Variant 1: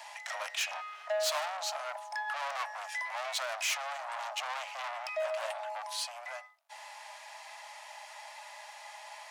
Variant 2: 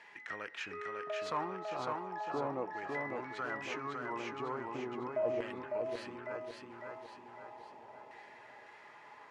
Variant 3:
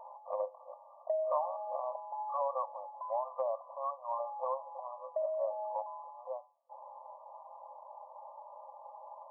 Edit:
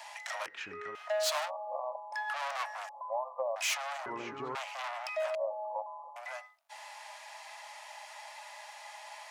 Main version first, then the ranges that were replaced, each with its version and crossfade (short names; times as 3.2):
1
0.46–0.95 from 2
1.48–2.14 from 3, crossfade 0.06 s
2.89–3.56 from 3
4.06–4.55 from 2
5.35–6.16 from 3